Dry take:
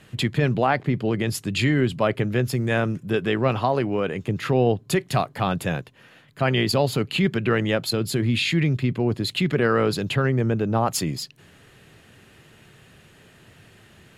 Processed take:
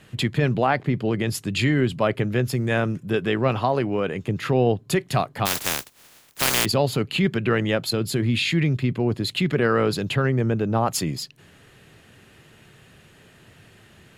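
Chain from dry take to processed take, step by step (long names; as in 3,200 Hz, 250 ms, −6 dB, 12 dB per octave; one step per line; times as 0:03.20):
0:05.45–0:06.64: compressing power law on the bin magnitudes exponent 0.15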